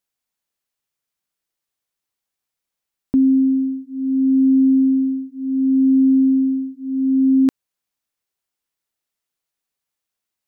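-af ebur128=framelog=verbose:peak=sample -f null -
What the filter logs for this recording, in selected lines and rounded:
Integrated loudness:
  I:         -17.1 LUFS
  Threshold: -27.0 LUFS
Loudness range:
  LRA:         7.1 LU
  Threshold: -39.0 LUFS
  LRA low:   -23.8 LUFS
  LRA high:  -16.6 LUFS
Sample peak:
  Peak:       -9.9 dBFS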